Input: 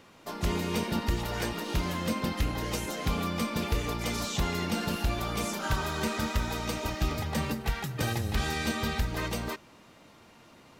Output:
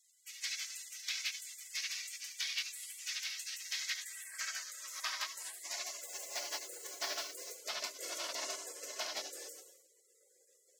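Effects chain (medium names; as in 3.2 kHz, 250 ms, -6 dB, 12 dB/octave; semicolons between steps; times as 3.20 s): band-stop 2 kHz, Q 6.8; reverberation, pre-delay 12 ms, DRR 4.5 dB; in parallel at +2.5 dB: compression 6:1, threshold -36 dBFS, peak gain reduction 13 dB; on the sum: FFT filter 100 Hz 0 dB, 190 Hz -7 dB, 470 Hz -30 dB, 750 Hz +2 dB, 3.1 kHz +8 dB, 5.4 kHz +2 dB, 9.8 kHz -13 dB, 15 kHz -17 dB; on a send: flutter echo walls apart 11.9 m, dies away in 0.44 s; 6.01–7.57 s: on the sum: modulation noise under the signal 32 dB; spectral gate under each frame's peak -30 dB weak; high-pass sweep 2.4 kHz -> 490 Hz, 3.60–6.73 s; trim +3 dB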